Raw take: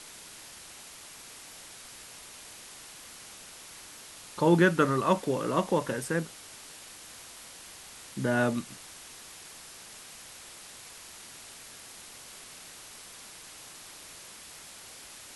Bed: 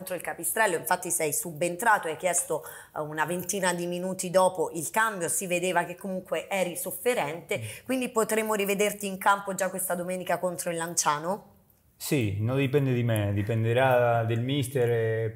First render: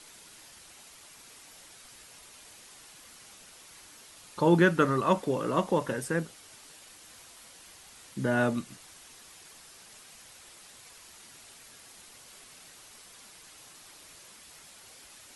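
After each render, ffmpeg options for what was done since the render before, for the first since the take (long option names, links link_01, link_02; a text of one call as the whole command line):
ffmpeg -i in.wav -af "afftdn=noise_reduction=6:noise_floor=-48" out.wav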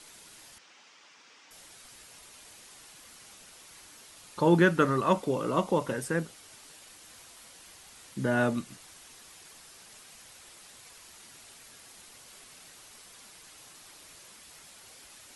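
ffmpeg -i in.wav -filter_complex "[0:a]asettb=1/sr,asplit=3[link_01][link_02][link_03];[link_01]atrim=end=0.584[link_04];[link_02]atrim=start=0.58:end=1.51,asetpts=PTS-STARTPTS,afade=type=in:duration=0.004:curve=qsin,afade=type=out:start_time=0.926:duration=0.004:curve=qsin,highpass=290,equalizer=frequency=380:width_type=q:width=4:gain=-5,equalizer=frequency=660:width_type=q:width=4:gain=-6,equalizer=frequency=4100:width_type=q:width=4:gain=-6,lowpass=frequency=5600:width=0.5412,lowpass=frequency=5600:width=1.3066[link_05];[link_03]atrim=start=1.506[link_06];[link_04][link_05]acrossfade=duration=0.004:curve1=hsin:curve2=qsin[link_07];[link_07][link_06]acrossfade=duration=0.004:curve1=qsin:curve2=hsin,asettb=1/sr,asplit=3[link_08][link_09][link_10];[link_08]atrim=end=5.174[link_11];[link_09]atrim=start=5.17:end=5.91,asetpts=PTS-STARTPTS,afade=type=in:duration=0.004:curve=qsin,afade=type=out:start_time=0.736:duration=0.004:curve=qsin,bandreject=frequency=1700:width=5.8[link_12];[link_10]atrim=start=5.906[link_13];[link_11][link_12]acrossfade=duration=0.004:curve1=hsin:curve2=qsin[link_14];[link_14][link_13]acrossfade=duration=0.004:curve1=qsin:curve2=hsin" out.wav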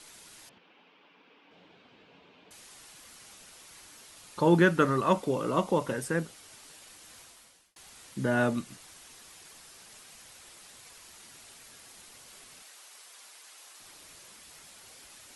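ffmpeg -i in.wav -filter_complex "[0:a]asettb=1/sr,asplit=3[link_01][link_02][link_03];[link_01]atrim=end=0.494[link_04];[link_02]atrim=start=0.49:end=2.51,asetpts=PTS-STARTPTS,afade=type=in:duration=0.004:curve=qsin,afade=type=out:start_time=2.016:duration=0.004:curve=qsin,highpass=120,equalizer=frequency=180:width_type=q:width=4:gain=9,equalizer=frequency=280:width_type=q:width=4:gain=7,equalizer=frequency=440:width_type=q:width=4:gain=6,equalizer=frequency=1300:width_type=q:width=4:gain=-5,equalizer=frequency=1900:width_type=q:width=4:gain=-8,lowpass=frequency=3000:width=0.5412,lowpass=frequency=3000:width=1.3066[link_05];[link_03]atrim=start=2.506[link_06];[link_04][link_05]acrossfade=duration=0.004:curve1=hsin:curve2=qsin[link_07];[link_07][link_06]acrossfade=duration=0.004:curve1=qsin:curve2=hsin,asettb=1/sr,asplit=3[link_08][link_09][link_10];[link_08]atrim=end=12.624[link_11];[link_09]atrim=start=12.62:end=13.8,asetpts=PTS-STARTPTS,afade=type=in:duration=0.004:curve=qsin,afade=type=out:start_time=1.176:duration=0.004:curve=qsin,highpass=540[link_12];[link_10]atrim=start=13.796[link_13];[link_11][link_12]acrossfade=duration=0.004:curve1=hsin:curve2=qsin[link_14];[link_14][link_13]acrossfade=duration=0.004:curve1=qsin:curve2=hsin,asplit=2[link_15][link_16];[link_15]atrim=end=7.76,asetpts=PTS-STARTPTS,afade=type=out:start_time=7.19:duration=0.57[link_17];[link_16]atrim=start=7.76,asetpts=PTS-STARTPTS,afade=type=in:duration=0.004:curve=hsin[link_18];[link_17][link_18]concat=n=2:v=0:a=1" out.wav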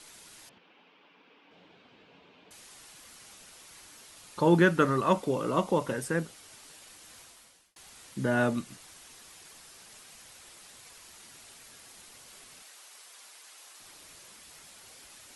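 ffmpeg -i in.wav -af anull out.wav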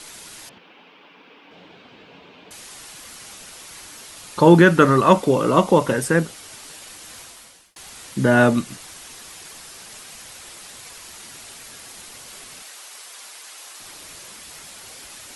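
ffmpeg -i in.wav -af "volume=11.5dB,alimiter=limit=-1dB:level=0:latency=1" out.wav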